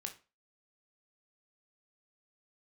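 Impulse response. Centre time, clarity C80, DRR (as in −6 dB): 11 ms, 19.0 dB, 4.0 dB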